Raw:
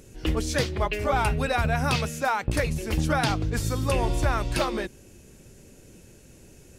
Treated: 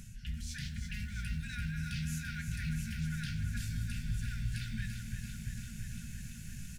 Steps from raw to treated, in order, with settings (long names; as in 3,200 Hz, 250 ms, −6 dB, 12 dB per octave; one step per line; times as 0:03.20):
low-shelf EQ 490 Hz +5 dB
hum removal 49.09 Hz, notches 3
reversed playback
downward compressor 5 to 1, threshold −33 dBFS, peak gain reduction 16.5 dB
reversed playback
brickwall limiter −31 dBFS, peak gain reduction 8 dB
linear-phase brick-wall band-stop 240–1,400 Hz
ambience of single reflections 18 ms −12.5 dB, 30 ms −15 dB
on a send at −11 dB: convolution reverb RT60 1.7 s, pre-delay 15 ms
on the sum: feedback echo at a low word length 339 ms, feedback 80%, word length 11 bits, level −7.5 dB
level +1.5 dB